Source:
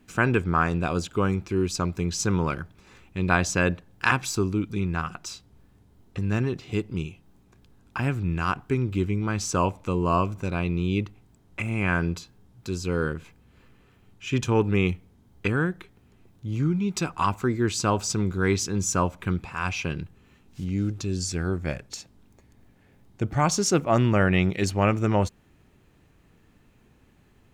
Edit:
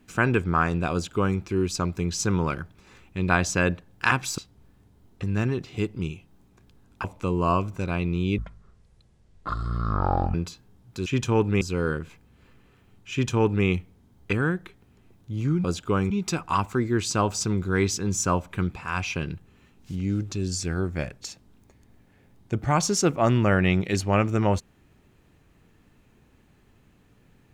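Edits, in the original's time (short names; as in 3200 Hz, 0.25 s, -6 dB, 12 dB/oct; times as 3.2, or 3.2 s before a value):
0.92–1.38 copy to 16.79
4.38–5.33 cut
7.99–9.68 cut
11.02–12.04 speed 52%
14.26–14.81 copy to 12.76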